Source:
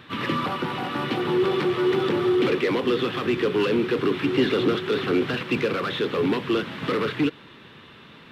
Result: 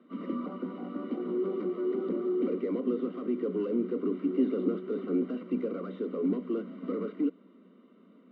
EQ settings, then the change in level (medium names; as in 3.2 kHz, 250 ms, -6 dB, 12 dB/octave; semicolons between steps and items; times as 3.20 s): boxcar filter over 52 samples; rippled Chebyshev high-pass 180 Hz, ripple 6 dB; 0.0 dB